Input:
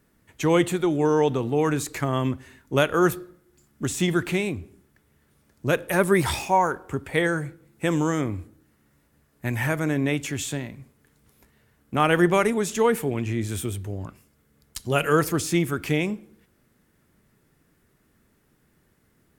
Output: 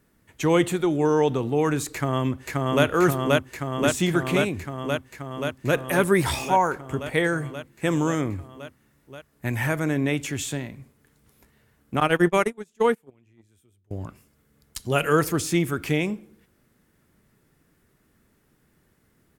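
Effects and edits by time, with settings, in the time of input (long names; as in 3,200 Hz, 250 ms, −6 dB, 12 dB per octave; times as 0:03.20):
0:01.93–0:02.85: delay throw 530 ms, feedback 80%, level −0.5 dB
0:12.00–0:13.91: noise gate −21 dBFS, range −33 dB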